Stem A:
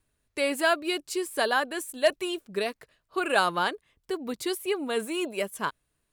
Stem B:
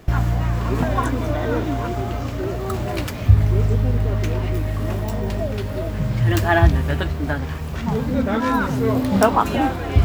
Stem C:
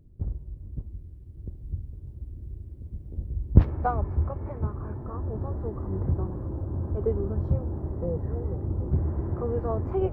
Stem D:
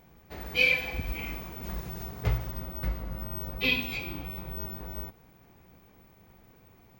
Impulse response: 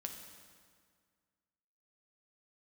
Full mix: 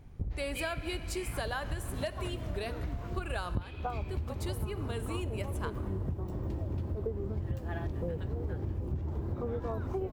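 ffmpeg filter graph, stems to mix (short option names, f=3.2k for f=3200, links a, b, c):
-filter_complex "[0:a]volume=-7.5dB,asplit=2[a][b];[b]volume=-4dB[c];[1:a]adelay=1200,volume=-19dB[d];[2:a]volume=2dB[e];[3:a]lowpass=7.9k,acompressor=threshold=-29dB:ratio=6,volume=-8.5dB,asplit=2[f][g];[g]volume=-4.5dB[h];[4:a]atrim=start_sample=2205[i];[c][h]amix=inputs=2:normalize=0[j];[j][i]afir=irnorm=-1:irlink=0[k];[a][d][e][f][k]amix=inputs=5:normalize=0,acompressor=threshold=-31dB:ratio=10"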